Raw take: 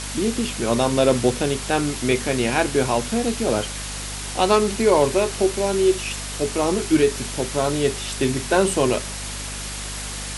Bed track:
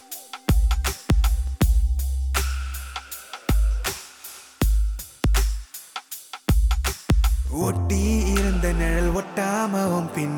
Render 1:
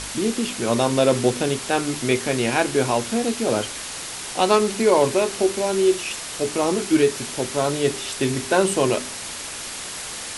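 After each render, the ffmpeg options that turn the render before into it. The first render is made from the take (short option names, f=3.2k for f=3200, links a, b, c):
-af "bandreject=f=50:t=h:w=4,bandreject=f=100:t=h:w=4,bandreject=f=150:t=h:w=4,bandreject=f=200:t=h:w=4,bandreject=f=250:t=h:w=4,bandreject=f=300:t=h:w=4,bandreject=f=350:t=h:w=4,bandreject=f=400:t=h:w=4"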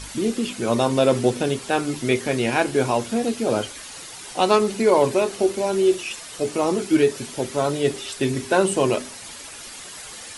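-af "afftdn=nr=9:nf=-33"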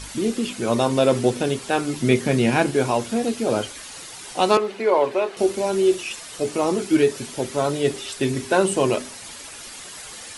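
-filter_complex "[0:a]asettb=1/sr,asplit=3[a][b][c];[a]atrim=end=2.004[d];[b]atrim=start=2:end=2.71,asetpts=PTS-STARTPTS,afade=t=in:d=0.004:c=qsin,afade=t=out:st=0.706:d=0.004:c=qsin,equalizer=f=170:w=1.2:g=10[e];[c]atrim=start=2.706[f];[d][e]acrossfade=d=0.004:c1=hsin:c2=qsin[g];[g][f]acrossfade=d=0.004:c1=qsin:c2=hsin,asettb=1/sr,asplit=3[h][i][j];[h]atrim=end=4.574[k];[i]atrim=start=4.57:end=5.37,asetpts=PTS-STARTPTS,afade=t=in:d=0.004:c=qsin,afade=t=out:st=0.796:d=0.004:c=qsin,acrossover=split=350 3700:gain=0.178 1 0.141[l][m][n];[l][m][n]amix=inputs=3:normalize=0[o];[j]atrim=start=5.366[p];[k][o]acrossfade=d=0.004:c1=hsin:c2=qsin[q];[q][p]acrossfade=d=0.004:c1=qsin:c2=hsin"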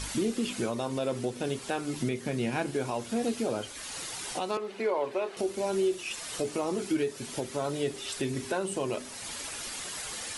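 -af "acompressor=threshold=-32dB:ratio=1.5,alimiter=limit=-20dB:level=0:latency=1:release=466"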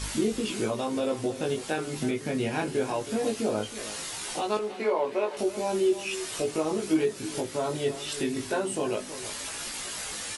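-filter_complex "[0:a]asplit=2[a][b];[b]adelay=19,volume=-2dB[c];[a][c]amix=inputs=2:normalize=0,asplit=2[d][e];[e]adelay=320.7,volume=-13dB,highshelf=f=4k:g=-7.22[f];[d][f]amix=inputs=2:normalize=0"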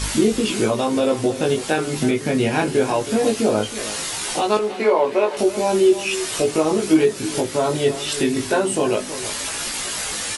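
-af "volume=9.5dB"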